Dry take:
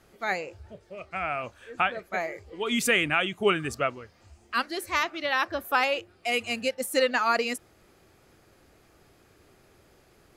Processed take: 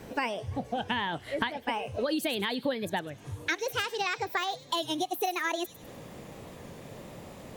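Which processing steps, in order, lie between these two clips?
gliding playback speed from 124% → 150%
parametric band 220 Hz +9.5 dB 2.9 octaves
downward compressor 12 to 1, threshold −36 dBFS, peak gain reduction 23 dB
delay with a high-pass on its return 101 ms, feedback 45%, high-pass 5,400 Hz, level −8 dB
wow of a warped record 33 1/3 rpm, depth 100 cents
level +8.5 dB

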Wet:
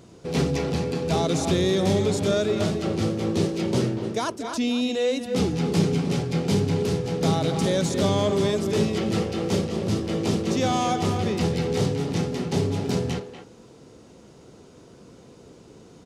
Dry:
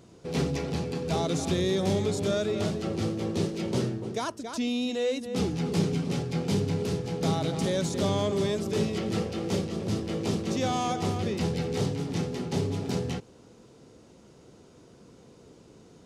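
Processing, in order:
far-end echo of a speakerphone 240 ms, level −9 dB
level +4.5 dB

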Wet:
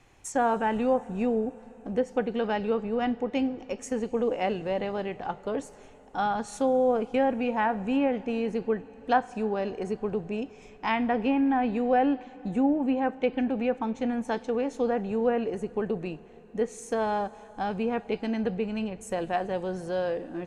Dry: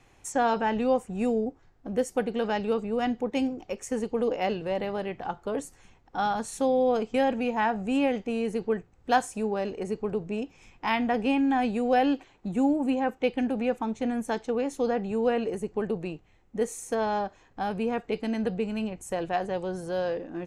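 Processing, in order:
treble cut that deepens with the level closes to 1,900 Hz, closed at −20 dBFS
dense smooth reverb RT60 5 s, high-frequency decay 0.95×, DRR 18.5 dB

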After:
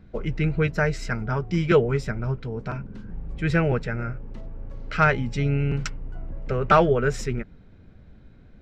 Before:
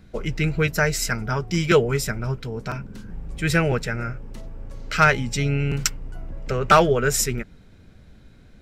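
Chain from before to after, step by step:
head-to-tape spacing loss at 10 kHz 24 dB

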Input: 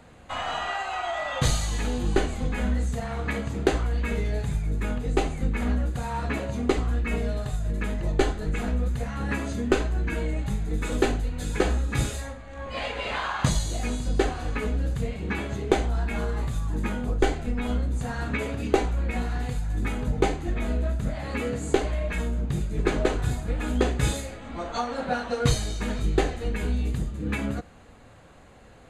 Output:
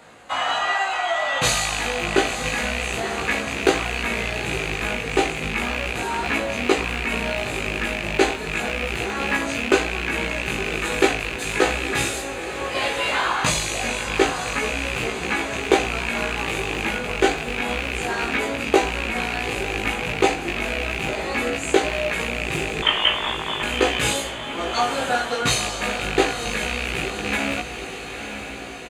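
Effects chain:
loose part that buzzes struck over −27 dBFS, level −21 dBFS
high-pass filter 560 Hz 6 dB per octave
double-tracking delay 18 ms −2 dB
0:22.82–0:23.63: voice inversion scrambler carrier 3,500 Hz
feedback delay with all-pass diffusion 942 ms, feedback 60%, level −9 dB
level +6.5 dB

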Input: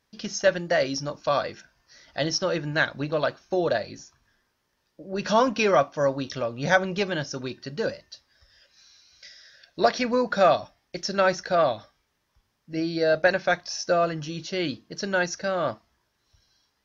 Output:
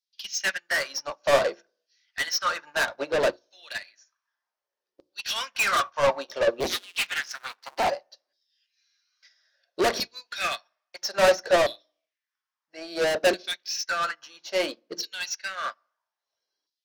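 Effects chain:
0:06.60–0:07.90: sub-harmonics by changed cycles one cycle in 2, inverted
auto-filter high-pass saw down 0.6 Hz 340–4,400 Hz
in parallel at −6 dB: sine wavefolder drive 14 dB, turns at −1.5 dBFS
on the sum: mains-hum notches 60/120/180/240/300/360 Hz
soft clipping −15.5 dBFS, distortion −7 dB
on a send at −13 dB: convolution reverb RT60 0.70 s, pre-delay 3 ms
on the sum: expander for the loud parts 2.5 to 1, over −35 dBFS

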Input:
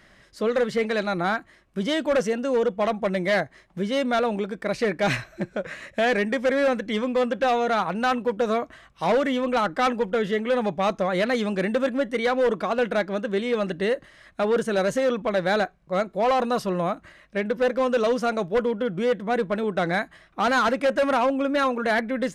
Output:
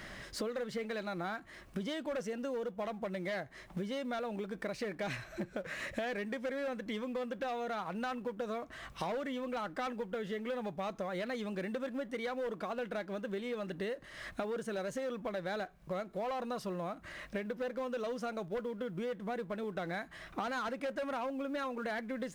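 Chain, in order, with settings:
mu-law and A-law mismatch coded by mu
downward compressor 8 to 1, threshold −36 dBFS, peak gain reduction 17 dB

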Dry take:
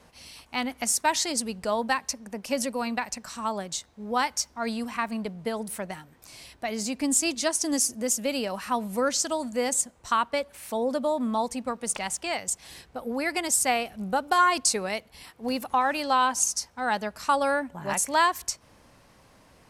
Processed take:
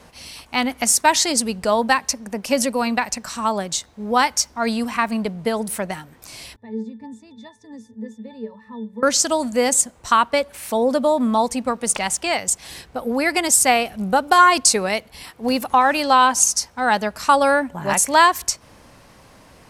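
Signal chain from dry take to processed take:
0:06.56–0:09.03: resonances in every octave A, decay 0.22 s
level +8.5 dB

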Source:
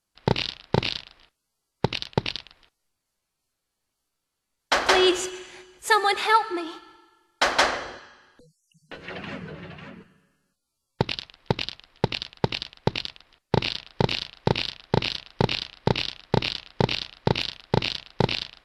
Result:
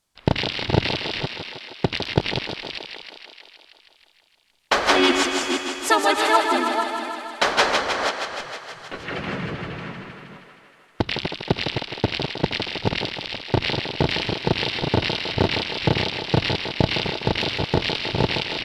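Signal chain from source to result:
delay that plays each chunk backwards 253 ms, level −8.5 dB
in parallel at +3 dB: downward compressor 10 to 1, threshold −28 dBFS, peak gain reduction 15.5 dB
on the sum: feedback echo with a high-pass in the loop 157 ms, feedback 73%, high-pass 240 Hz, level −6 dB
pitch-shifted copies added −5 semitones −2 dB
level −3.5 dB

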